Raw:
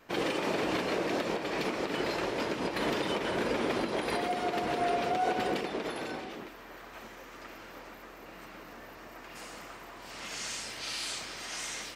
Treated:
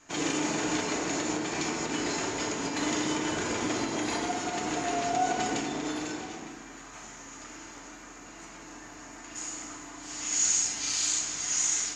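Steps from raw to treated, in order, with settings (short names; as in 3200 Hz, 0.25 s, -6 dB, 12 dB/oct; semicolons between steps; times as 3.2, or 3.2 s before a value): synth low-pass 6800 Hz, resonance Q 16; bell 510 Hz -9 dB 0.39 oct; FDN reverb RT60 1.4 s, low-frequency decay 1.4×, high-frequency decay 0.45×, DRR 1 dB; gain -2 dB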